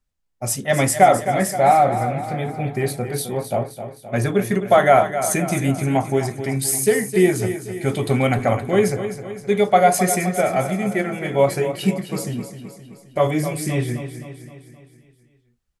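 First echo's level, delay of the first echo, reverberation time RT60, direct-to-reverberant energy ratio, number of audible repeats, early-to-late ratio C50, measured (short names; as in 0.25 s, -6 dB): -10.5 dB, 0.261 s, none, none, 5, none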